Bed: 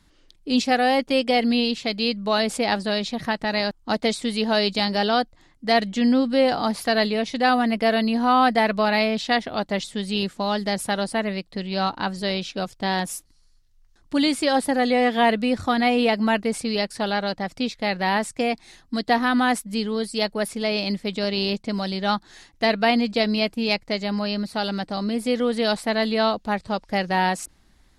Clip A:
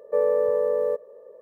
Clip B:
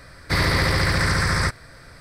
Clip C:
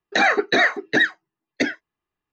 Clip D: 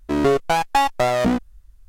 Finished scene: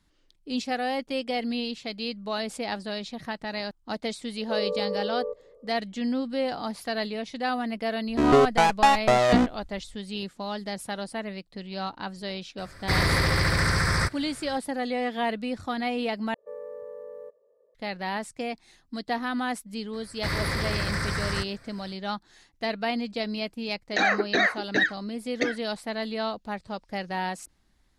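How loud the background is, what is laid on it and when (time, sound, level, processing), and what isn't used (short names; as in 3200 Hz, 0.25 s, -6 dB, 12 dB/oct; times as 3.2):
bed -9 dB
4.37 add A -6.5 dB + rippled Chebyshev low-pass 1600 Hz, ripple 6 dB
8.08 add D -1 dB + LPF 9400 Hz
12.58 add B -3 dB
16.34 replace with A -18 dB
19.93 add B -8.5 dB
23.81 add C -5.5 dB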